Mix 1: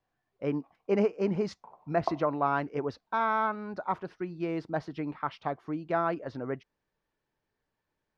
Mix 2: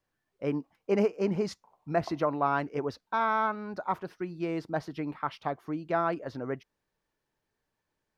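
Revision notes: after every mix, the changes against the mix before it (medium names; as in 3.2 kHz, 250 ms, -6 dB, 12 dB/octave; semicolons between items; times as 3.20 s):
background -11.5 dB; master: remove distance through air 85 m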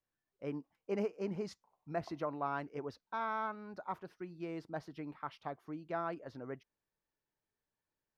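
speech -10.0 dB; background -11.5 dB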